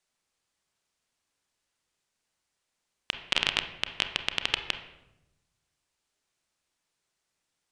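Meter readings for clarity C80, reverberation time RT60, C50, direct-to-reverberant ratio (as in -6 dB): 12.0 dB, 0.90 s, 9.5 dB, 7.0 dB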